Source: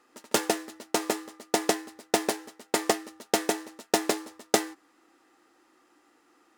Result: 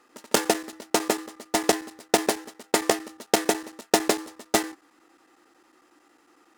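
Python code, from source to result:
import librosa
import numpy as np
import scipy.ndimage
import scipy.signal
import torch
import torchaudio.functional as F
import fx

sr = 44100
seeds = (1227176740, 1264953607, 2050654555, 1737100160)

y = fx.chopper(x, sr, hz=11.0, depth_pct=65, duty_pct=90)
y = y * librosa.db_to_amplitude(4.0)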